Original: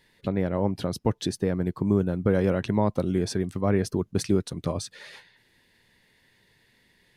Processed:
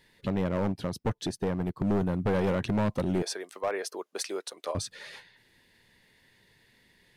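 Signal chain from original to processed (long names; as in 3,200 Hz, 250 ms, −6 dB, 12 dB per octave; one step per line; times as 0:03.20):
0:03.22–0:04.75: high-pass filter 490 Hz 24 dB per octave
gain into a clipping stage and back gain 22.5 dB
0:00.72–0:01.80: expander for the loud parts 1.5 to 1, over −47 dBFS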